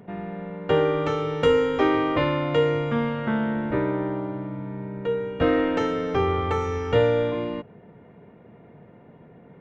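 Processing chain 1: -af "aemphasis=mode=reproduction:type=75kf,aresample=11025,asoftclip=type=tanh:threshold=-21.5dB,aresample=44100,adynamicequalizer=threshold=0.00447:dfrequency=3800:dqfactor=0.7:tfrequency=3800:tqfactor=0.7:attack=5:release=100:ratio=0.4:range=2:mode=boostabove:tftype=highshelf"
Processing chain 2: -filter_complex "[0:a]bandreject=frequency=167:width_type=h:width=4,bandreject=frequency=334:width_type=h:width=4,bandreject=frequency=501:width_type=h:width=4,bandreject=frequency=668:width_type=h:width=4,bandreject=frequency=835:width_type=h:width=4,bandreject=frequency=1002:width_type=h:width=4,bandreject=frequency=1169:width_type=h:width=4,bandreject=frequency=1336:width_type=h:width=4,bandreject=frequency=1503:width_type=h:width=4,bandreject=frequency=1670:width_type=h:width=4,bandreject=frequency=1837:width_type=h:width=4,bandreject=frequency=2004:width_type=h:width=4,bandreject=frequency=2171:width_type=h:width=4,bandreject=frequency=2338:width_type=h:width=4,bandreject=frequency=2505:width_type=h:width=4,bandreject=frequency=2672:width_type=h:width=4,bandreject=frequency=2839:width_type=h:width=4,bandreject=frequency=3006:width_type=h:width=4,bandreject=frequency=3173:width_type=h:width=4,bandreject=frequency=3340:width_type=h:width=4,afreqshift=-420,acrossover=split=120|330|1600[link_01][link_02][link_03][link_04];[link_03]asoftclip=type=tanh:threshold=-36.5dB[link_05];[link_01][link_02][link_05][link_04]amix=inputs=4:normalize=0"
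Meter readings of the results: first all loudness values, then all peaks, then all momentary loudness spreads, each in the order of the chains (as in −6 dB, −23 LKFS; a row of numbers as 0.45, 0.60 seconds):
−28.0, −27.5 LKFS; −21.0, −9.0 dBFS; 8, 10 LU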